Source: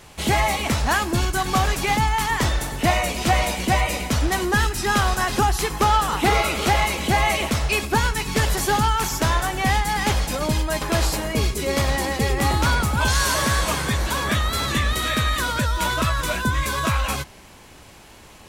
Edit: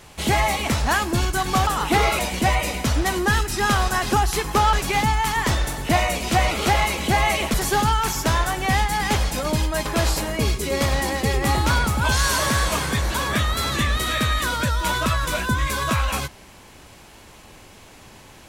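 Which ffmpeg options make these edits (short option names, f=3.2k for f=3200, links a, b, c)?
-filter_complex "[0:a]asplit=6[a][b][c][d][e][f];[a]atrim=end=1.672[g];[b]atrim=start=5.988:end=6.512[h];[c]atrim=start=3.448:end=5.992[i];[d]atrim=start=1.668:end=3.452[j];[e]atrim=start=6.508:end=7.542[k];[f]atrim=start=8.498[l];[g][h]acrossfade=d=0.004:c1=hsin:c2=hsin[m];[m][i]acrossfade=d=0.004:c1=hsin:c2=hsin[n];[n][j]acrossfade=d=0.004:c1=hsin:c2=hsin[o];[o][k]acrossfade=d=0.004:c1=hsin:c2=hsin[p];[p][l]acrossfade=d=0.004:c1=hsin:c2=hsin"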